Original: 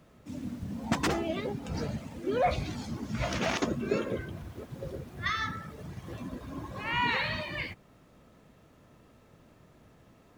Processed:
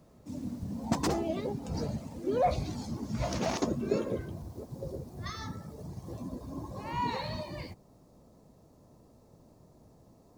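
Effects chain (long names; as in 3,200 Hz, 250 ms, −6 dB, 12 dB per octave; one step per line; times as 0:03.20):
flat-topped bell 2,100 Hz −8.5 dB, from 0:04.33 −14.5 dB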